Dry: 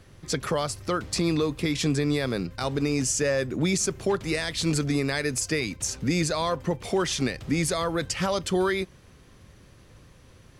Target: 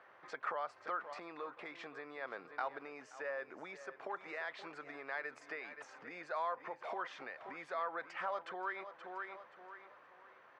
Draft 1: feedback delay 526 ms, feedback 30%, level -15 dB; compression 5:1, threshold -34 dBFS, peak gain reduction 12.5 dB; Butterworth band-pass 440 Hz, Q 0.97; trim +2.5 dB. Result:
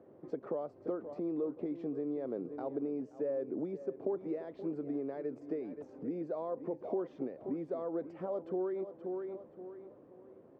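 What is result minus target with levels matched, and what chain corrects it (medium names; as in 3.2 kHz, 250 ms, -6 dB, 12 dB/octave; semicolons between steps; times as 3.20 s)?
1 kHz band -12.5 dB
feedback delay 526 ms, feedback 30%, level -15 dB; compression 5:1, threshold -34 dBFS, peak gain reduction 12.5 dB; Butterworth band-pass 1.1 kHz, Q 0.97; trim +2.5 dB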